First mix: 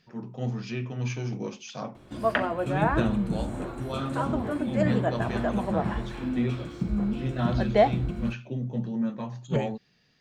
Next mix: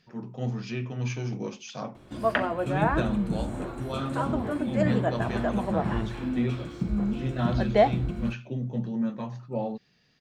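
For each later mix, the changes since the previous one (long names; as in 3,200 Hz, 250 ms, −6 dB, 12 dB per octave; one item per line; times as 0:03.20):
second voice: entry +2.95 s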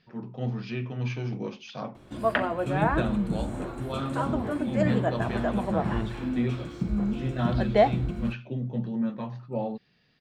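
first voice: add low-pass filter 4,700 Hz 24 dB per octave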